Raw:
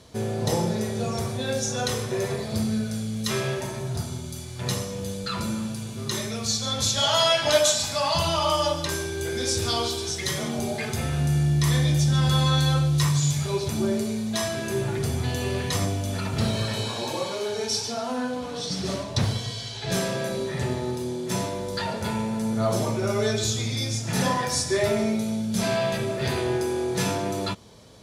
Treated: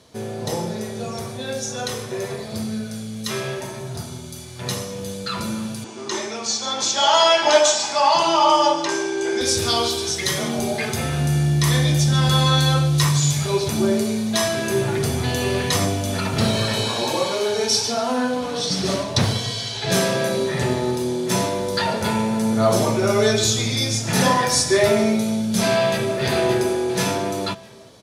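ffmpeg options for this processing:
ffmpeg -i in.wav -filter_complex "[0:a]asettb=1/sr,asplit=3[link_01][link_02][link_03];[link_01]atrim=end=5.844[link_04];[link_02]atrim=start=5.84:end=9.41,asetpts=PTS-STARTPTS,afade=type=in:duration=0.004:curve=qsin,afade=type=out:start_time=3.566:duration=0.004:curve=qsin,highpass=310,equalizer=frequency=340:width_type=q:width=4:gain=9,equalizer=frequency=510:width_type=q:width=4:gain=-3,equalizer=frequency=880:width_type=q:width=4:gain=8,equalizer=frequency=3900:width_type=q:width=4:gain=-6,lowpass=frequency=7500:width=0.5412,lowpass=frequency=7500:width=1.3066[link_05];[link_03]atrim=start=9.406[link_06];[link_04][link_05]acrossfade=duration=0.004:curve1=hsin:curve2=qsin[link_07];[link_07][link_06]acrossfade=duration=0.004:curve1=qsin:curve2=hsin,asplit=2[link_08][link_09];[link_09]afade=type=in:start_time=25.75:duration=0.01,afade=type=out:start_time=26.18:duration=0.01,aecho=0:1:570|1140|1710|2280|2850:0.595662|0.238265|0.0953059|0.0381224|0.015249[link_10];[link_08][link_10]amix=inputs=2:normalize=0,highpass=frequency=150:poles=1,bandreject=frequency=7400:width=30,dynaudnorm=framelen=810:gausssize=13:maxgain=8dB" out.wav

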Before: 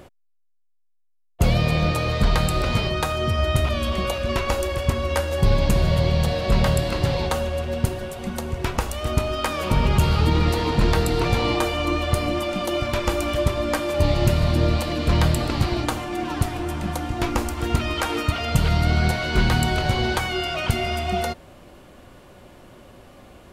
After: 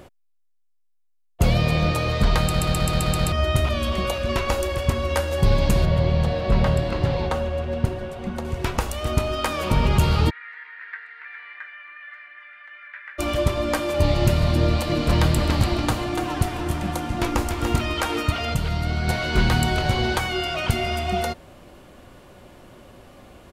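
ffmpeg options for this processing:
ffmpeg -i in.wav -filter_complex "[0:a]asettb=1/sr,asplit=3[link_01][link_02][link_03];[link_01]atrim=end=5.854[link_04];[link_02]atrim=start=5.85:end=8.45,asetpts=PTS-STARTPTS,afade=type=in:duration=0.004:curve=qsin,afade=type=out:start_time=2.596:duration=0.004:curve=qsin,lowpass=frequency=2200:poles=1[link_05];[link_03]atrim=start=8.446[link_06];[link_04][link_05]acrossfade=duration=0.004:curve1=hsin:curve2=qsin[link_07];[link_07][link_06]acrossfade=duration=0.004:curve1=qsin:curve2=hsin,asplit=3[link_08][link_09][link_10];[link_08]afade=type=out:start_time=10.29:duration=0.02[link_11];[link_09]asuperpass=centerf=1800:order=4:qfactor=3.6,afade=type=in:start_time=10.29:duration=0.02,afade=type=out:start_time=13.18:duration=0.02[link_12];[link_10]afade=type=in:start_time=13.18:duration=0.02[link_13];[link_11][link_12][link_13]amix=inputs=3:normalize=0,asplit=3[link_14][link_15][link_16];[link_14]afade=type=out:start_time=14.88:duration=0.02[link_17];[link_15]aecho=1:1:290:0.473,afade=type=in:start_time=14.88:duration=0.02,afade=type=out:start_time=17.86:duration=0.02[link_18];[link_16]afade=type=in:start_time=17.86:duration=0.02[link_19];[link_17][link_18][link_19]amix=inputs=3:normalize=0,asplit=10[link_20][link_21][link_22][link_23][link_24][link_25][link_26][link_27][link_28][link_29];[link_20]atrim=end=2.542[link_30];[link_21]atrim=start=2.408:end=2.542[link_31];[link_22]atrim=start=2.408:end=2.542[link_32];[link_23]atrim=start=2.408:end=2.542[link_33];[link_24]atrim=start=2.408:end=2.542[link_34];[link_25]atrim=start=2.408:end=2.542[link_35];[link_26]atrim=start=2.408:end=2.542[link_36];[link_27]atrim=start=3.318:end=18.542[link_37];[link_28]atrim=start=18.538:end=19.082,asetpts=PTS-STARTPTS,volume=-5dB[link_38];[link_29]atrim=start=19.078[link_39];[link_30][link_31]acrossfade=duration=0.004:curve1=hsin:curve2=hsin[link_40];[link_40][link_32]acrossfade=duration=0.004:curve1=hsin:curve2=hsin[link_41];[link_41][link_33]acrossfade=duration=0.004:curve1=hsin:curve2=hsin[link_42];[link_42][link_34]acrossfade=duration=0.004:curve1=hsin:curve2=hsin[link_43];[link_43][link_35]acrossfade=duration=0.004:curve1=hsin:curve2=hsin[link_44];[link_44][link_36]acrossfade=duration=0.004:curve1=hsin:curve2=hsin[link_45];[link_45][link_37]acrossfade=duration=0.004:curve1=hsin:curve2=hsin[link_46];[link_46][link_38]acrossfade=duration=0.004:curve1=hsin:curve2=hsin[link_47];[link_47][link_39]acrossfade=duration=0.004:curve1=hsin:curve2=hsin" out.wav

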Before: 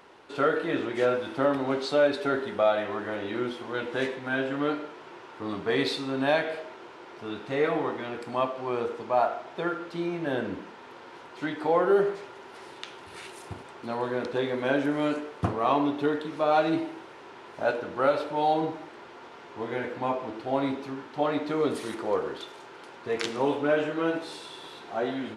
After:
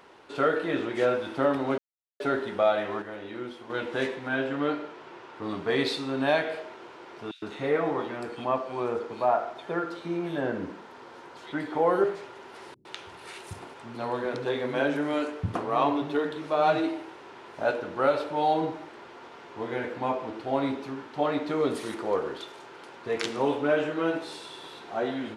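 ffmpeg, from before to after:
ffmpeg -i in.wav -filter_complex "[0:a]asettb=1/sr,asplit=3[link_01][link_02][link_03];[link_01]atrim=end=4.274[link_04];[link_02]atrim=start=4.27:end=5.43,asetpts=PTS-STARTPTS,afade=type=in:duration=0.004:curve=qsin,afade=type=out:start_time=1.156:duration=0.004:curve=qsin,highshelf=frequency=8500:gain=-7.5[link_05];[link_03]atrim=start=5.426[link_06];[link_04][link_05]acrossfade=duration=0.004:curve1=hsin:curve2=qsin[link_07];[link_07][link_06]acrossfade=duration=0.004:curve1=qsin:curve2=hsin,asettb=1/sr,asplit=3[link_08][link_09][link_10];[link_08]atrim=end=7.314[link_11];[link_09]atrim=start=7.31:end=12.04,asetpts=PTS-STARTPTS,afade=type=in:duration=0.004:curve=qsin,afade=type=out:start_time=4.726:duration=0.004:curve=qsin,acrossover=split=2700[link_12][link_13];[link_12]adelay=110[link_14];[link_14][link_13]amix=inputs=2:normalize=0,atrim=end_sample=208593[link_15];[link_10]atrim=start=12.036[link_16];[link_11][link_15]acrossfade=duration=0.004:curve1=hsin:curve2=qsin[link_17];[link_17][link_16]acrossfade=duration=0.004:curve1=qsin:curve2=hsin,asettb=1/sr,asplit=3[link_18][link_19][link_20];[link_18]atrim=end=12.744[link_21];[link_19]atrim=start=12.74:end=17.16,asetpts=PTS-STARTPTS,afade=type=in:duration=0.004:curve=qsin,afade=type=out:start_time=4.416:duration=0.004:curve=qsin,acrossover=split=230[link_22][link_23];[link_23]adelay=110[link_24];[link_22][link_24]amix=inputs=2:normalize=0,atrim=end_sample=194922[link_25];[link_20]atrim=start=17.156[link_26];[link_21][link_25]acrossfade=duration=0.004:curve1=hsin:curve2=qsin[link_27];[link_27][link_26]acrossfade=duration=0.004:curve1=qsin:curve2=hsin,asplit=5[link_28][link_29][link_30][link_31][link_32];[link_28]atrim=end=1.78,asetpts=PTS-STARTPTS,afade=type=out:start_time=1.776:duration=0.004:curve=hsin[link_33];[link_29]atrim=start=1.78:end=2.2,asetpts=PTS-STARTPTS,volume=0[link_34];[link_30]atrim=start=2.2:end=3.022,asetpts=PTS-STARTPTS,afade=type=in:duration=0.004:curve=hsin[link_35];[link_31]atrim=start=3.018:end=3.702,asetpts=PTS-STARTPTS,volume=-6.5dB[link_36];[link_32]atrim=start=3.698[link_37];[link_33][link_34][link_35]concat=n=3:v=0:a=1[link_38];[link_38][link_36]acrossfade=duration=0.004:curve1=hsin:curve2=hsin[link_39];[link_39][link_37]acrossfade=duration=0.004:curve1=hsin:curve2=hsin" out.wav

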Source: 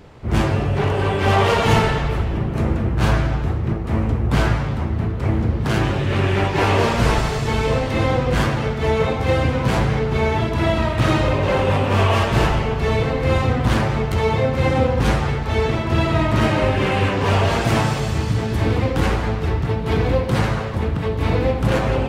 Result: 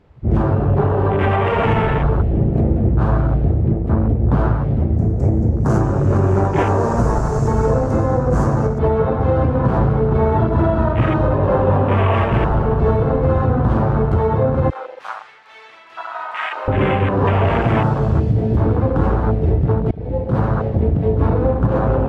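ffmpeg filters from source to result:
ffmpeg -i in.wav -filter_complex "[0:a]asettb=1/sr,asplit=3[link_01][link_02][link_03];[link_01]atrim=end=4.974[link_04];[link_02]atrim=start=4.97:end=8.79,asetpts=PTS-STARTPTS,afade=type=in:duration=0.004:curve=qsin,afade=type=out:start_time=3.816:duration=0.004:curve=qsin,highshelf=frequency=4800:width_type=q:width=3:gain=12.5[link_05];[link_03]atrim=start=8.786[link_06];[link_04][link_05]acrossfade=duration=0.004:curve1=hsin:curve2=qsin[link_07];[link_07][link_06]acrossfade=duration=0.004:curve1=qsin:curve2=hsin,asettb=1/sr,asplit=3[link_08][link_09][link_10];[link_08]atrim=end=14.704[link_11];[link_09]atrim=start=14.7:end=16.68,asetpts=PTS-STARTPTS,afade=type=in:duration=0.004:curve=qsin,afade=type=out:start_time=1.976:duration=0.004:curve=qsin,highpass=1300[link_12];[link_10]atrim=start=16.676[link_13];[link_11][link_12]acrossfade=duration=0.004:curve1=hsin:curve2=qsin[link_14];[link_14][link_13]acrossfade=duration=0.004:curve1=qsin:curve2=hsin,asplit=2[link_15][link_16];[link_15]atrim=end=19.91,asetpts=PTS-STARTPTS,afade=type=out:start_time=19.906:duration=0.004:curve=hsin:silence=0.0668344[link_17];[link_16]atrim=start=19.91,asetpts=PTS-STARTPTS,afade=type=in:duration=0.78:silence=0.0668344[link_18];[link_17][link_18]concat=n=2:v=0:a=1,lowpass=frequency=2500:poles=1,afwtdn=0.0562,alimiter=limit=-13dB:level=0:latency=1:release=273,volume=6.5dB" out.wav

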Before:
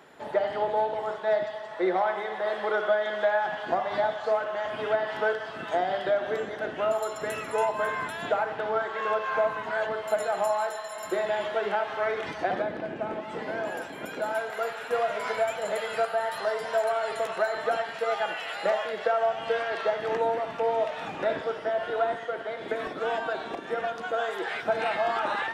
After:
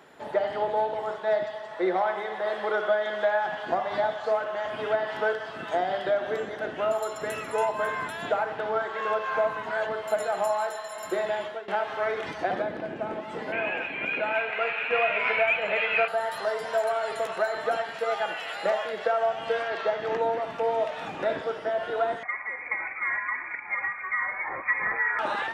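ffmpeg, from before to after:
ffmpeg -i in.wav -filter_complex "[0:a]asettb=1/sr,asplit=3[link_01][link_02][link_03];[link_01]atrim=end=13.524[link_04];[link_02]atrim=start=13.52:end=16.08,asetpts=PTS-STARTPTS,afade=type=in:duration=0.004:curve=qsin,afade=type=out:start_time=2.556:duration=0.004:curve=qsin,lowpass=frequency=2500:width_type=q:width=12[link_05];[link_03]atrim=start=16.076[link_06];[link_04][link_05]acrossfade=duration=0.004:curve1=hsin:curve2=qsin[link_07];[link_07][link_06]acrossfade=duration=0.004:curve1=qsin:curve2=hsin,asettb=1/sr,asplit=3[link_08][link_09][link_10];[link_08]atrim=end=19.684[link_11];[link_09]atrim=start=19.68:end=20.42,asetpts=PTS-STARTPTS,afade=type=in:duration=0.004:curve=qsin,afade=type=out:start_time=0.736:duration=0.004:curve=qsin,equalizer=frequency=10000:width_type=o:width=0.42:gain=-15[link_12];[link_10]atrim=start=20.416[link_13];[link_11][link_12]acrossfade=duration=0.004:curve1=hsin:curve2=qsin[link_14];[link_14][link_13]acrossfade=duration=0.004:curve1=qsin:curve2=hsin,asettb=1/sr,asplit=3[link_15][link_16][link_17];[link_15]atrim=end=22.234[link_18];[link_16]atrim=start=22.23:end=25.19,asetpts=PTS-STARTPTS,afade=type=in:duration=0.004:curve=qsin,afade=type=out:start_time=2.956:duration=0.004:curve=qsin,lowpass=frequency=2200:width_type=q:width=0.5098,lowpass=frequency=2200:width_type=q:width=0.6013,lowpass=frequency=2200:width_type=q:width=0.9,lowpass=frequency=2200:width_type=q:width=2.563,afreqshift=-2600[link_19];[link_17]atrim=start=25.186[link_20];[link_18][link_19]acrossfade=duration=0.004:curve1=hsin:curve2=qsin[link_21];[link_21][link_20]acrossfade=duration=0.004:curve1=qsin:curve2=hsin,asplit=2[link_22][link_23];[link_22]atrim=end=11.68,asetpts=PTS-STARTPTS,afade=type=out:start_time=11.19:duration=0.49:curve=qsin:silence=0.1[link_24];[link_23]atrim=start=11.68,asetpts=PTS-STARTPTS,afade=type=in:duration=0.004:curve=hsin:silence=0.1[link_25];[link_24][link_25]concat=n=2:v=0:a=1" out.wav

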